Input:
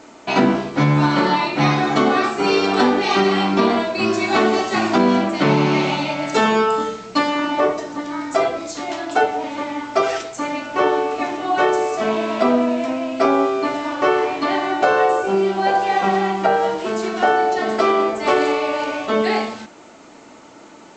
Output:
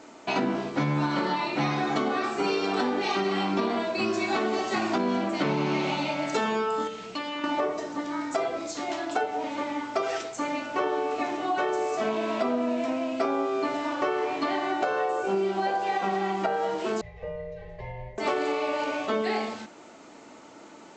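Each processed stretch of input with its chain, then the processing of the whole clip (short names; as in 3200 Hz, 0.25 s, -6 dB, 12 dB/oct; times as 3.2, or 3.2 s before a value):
6.87–7.44 bell 2900 Hz +8 dB 0.65 oct + compressor 2.5:1, threshold -29 dBFS
17.01–18.18 vowel filter u + frequency shift -270 Hz
whole clip: low shelf 160 Hz -9 dB; compressor, threshold -19 dBFS; low shelf 400 Hz +4 dB; gain -5.5 dB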